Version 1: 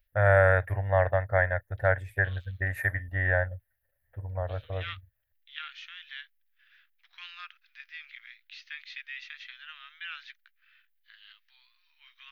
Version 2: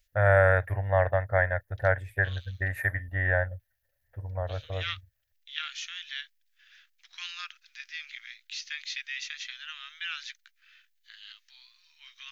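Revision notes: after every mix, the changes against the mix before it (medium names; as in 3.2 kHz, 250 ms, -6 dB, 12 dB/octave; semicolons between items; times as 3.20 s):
second voice: remove distance through air 330 m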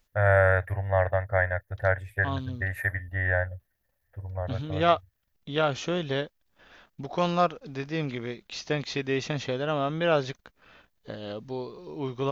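second voice: remove steep high-pass 1.7 kHz 36 dB/octave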